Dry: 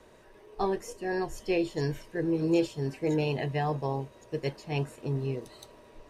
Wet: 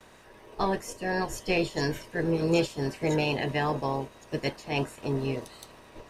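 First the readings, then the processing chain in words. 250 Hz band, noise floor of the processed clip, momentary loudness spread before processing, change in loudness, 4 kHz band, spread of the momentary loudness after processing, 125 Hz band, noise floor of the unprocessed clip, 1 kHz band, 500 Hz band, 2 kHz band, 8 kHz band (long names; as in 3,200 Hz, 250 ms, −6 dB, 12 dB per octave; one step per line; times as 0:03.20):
+0.5 dB, −53 dBFS, 9 LU, +1.5 dB, +7.0 dB, 9 LU, 0.0 dB, −55 dBFS, +3.5 dB, +1.5 dB, +6.5 dB, +6.5 dB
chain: ceiling on every frequency bin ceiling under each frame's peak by 12 dB
noise gate with hold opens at −46 dBFS
in parallel at −3.5 dB: soft clipping −22.5 dBFS, distortion −15 dB
on the sum: level −2 dB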